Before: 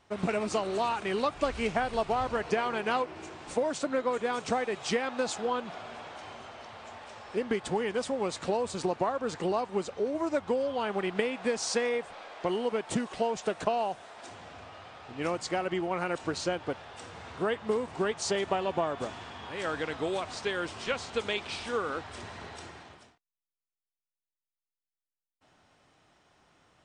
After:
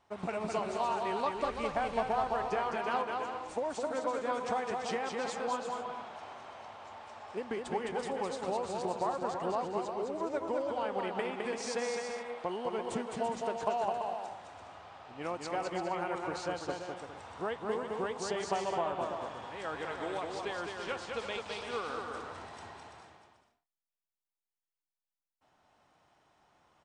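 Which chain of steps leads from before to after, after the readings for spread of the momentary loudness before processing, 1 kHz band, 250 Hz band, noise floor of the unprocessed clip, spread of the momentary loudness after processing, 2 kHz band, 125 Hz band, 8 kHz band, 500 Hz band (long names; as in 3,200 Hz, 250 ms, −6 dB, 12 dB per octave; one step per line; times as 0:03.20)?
15 LU, −1.0 dB, −6.5 dB, below −85 dBFS, 13 LU, −5.0 dB, −6.5 dB, −7.0 dB, −4.5 dB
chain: parametric band 870 Hz +7 dB 1.1 octaves
on a send: bouncing-ball delay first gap 210 ms, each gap 0.6×, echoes 5
on the sum: level −9 dB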